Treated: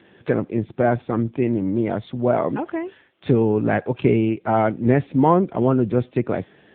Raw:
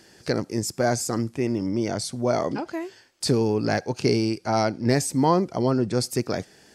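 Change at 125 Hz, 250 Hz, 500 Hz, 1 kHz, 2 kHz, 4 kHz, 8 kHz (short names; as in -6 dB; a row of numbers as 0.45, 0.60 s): +4.0 dB, +4.5 dB, +4.0 dB, +3.5 dB, +2.0 dB, under -10 dB, under -40 dB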